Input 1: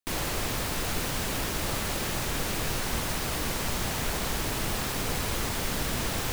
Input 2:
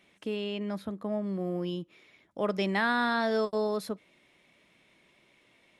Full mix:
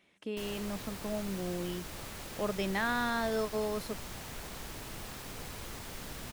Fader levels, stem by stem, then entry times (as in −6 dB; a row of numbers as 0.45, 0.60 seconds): −13.5, −4.5 decibels; 0.30, 0.00 seconds